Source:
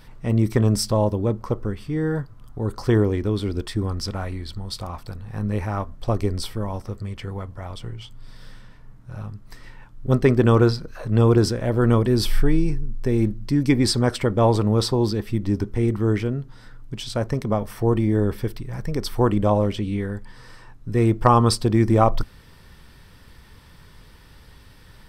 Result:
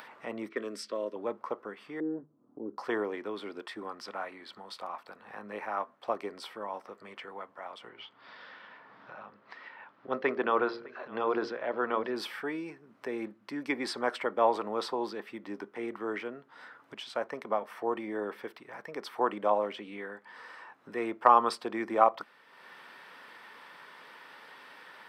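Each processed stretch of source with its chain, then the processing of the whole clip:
0:00.49–0:01.16: low-pass that shuts in the quiet parts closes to 1,900 Hz, open at −13.5 dBFS + phaser with its sweep stopped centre 340 Hz, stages 4
0:02.00–0:02.78: low-pass with resonance 300 Hz, resonance Q 3 + mains-hum notches 50/100/150/200 Hz
0:07.89–0:12.16: low-pass filter 4,900 Hz 24 dB per octave + hum removal 58.38 Hz, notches 10 + single-tap delay 609 ms −22 dB
whole clip: high-pass filter 220 Hz 24 dB per octave; three-way crossover with the lows and the highs turned down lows −16 dB, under 560 Hz, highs −17 dB, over 2,900 Hz; upward compression, threshold −39 dBFS; level −2 dB

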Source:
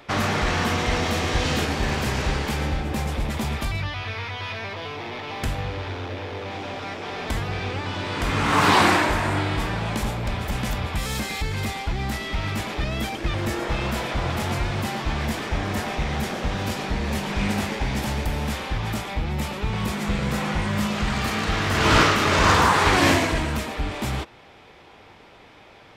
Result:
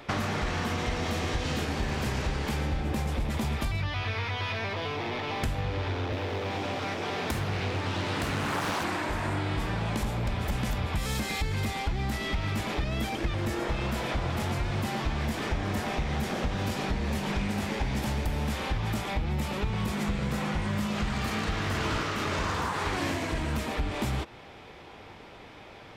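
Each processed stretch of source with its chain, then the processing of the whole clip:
0:06.12–0:08.84: high-pass filter 65 Hz 24 dB per octave + high-shelf EQ 10,000 Hz +11.5 dB + highs frequency-modulated by the lows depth 0.92 ms
whole clip: downward compressor 10 to 1, threshold −28 dBFS; low-shelf EQ 450 Hz +3 dB

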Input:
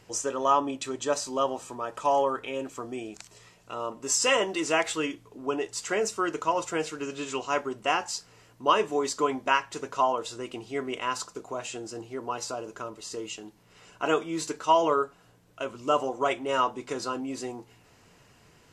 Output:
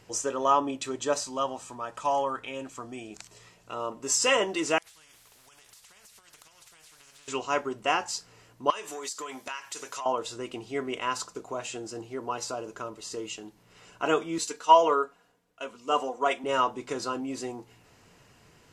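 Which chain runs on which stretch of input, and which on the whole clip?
0:01.23–0:03.11: Chebyshev low-pass filter 10,000 Hz + parametric band 410 Hz −6.5 dB 0.87 octaves
0:04.78–0:07.28: guitar amp tone stack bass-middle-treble 10-0-10 + downward compressor 20 to 1, threshold −47 dBFS + every bin compressed towards the loudest bin 4 to 1
0:08.70–0:10.06: spectral tilt +4 dB per octave + downward compressor, threshold −33 dBFS + saturating transformer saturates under 1,700 Hz
0:14.38–0:16.44: low-shelf EQ 200 Hz −12 dB + comb filter 4.2 ms, depth 49% + multiband upward and downward expander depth 40%
whole clip: no processing

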